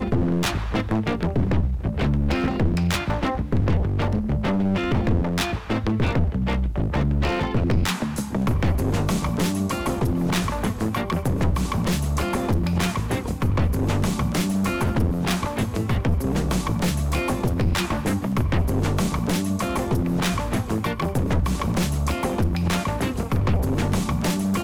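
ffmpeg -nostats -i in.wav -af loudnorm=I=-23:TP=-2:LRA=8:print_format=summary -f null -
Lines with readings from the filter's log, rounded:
Input Integrated:    -23.6 LUFS
Input True Peak:     -10.2 dBTP
Input LRA:             0.6 LU
Input Threshold:     -33.6 LUFS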